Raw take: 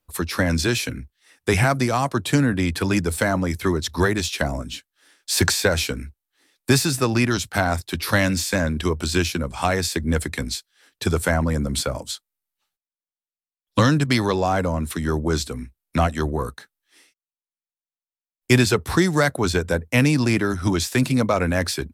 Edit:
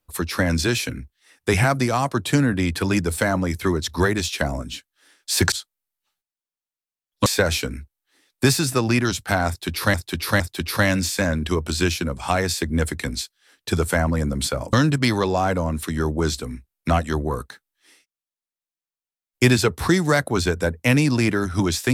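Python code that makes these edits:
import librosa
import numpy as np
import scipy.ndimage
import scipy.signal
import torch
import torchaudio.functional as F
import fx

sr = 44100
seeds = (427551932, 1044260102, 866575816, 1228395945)

y = fx.edit(x, sr, fx.repeat(start_s=7.74, length_s=0.46, count=3),
    fx.move(start_s=12.07, length_s=1.74, to_s=5.52), tone=tone)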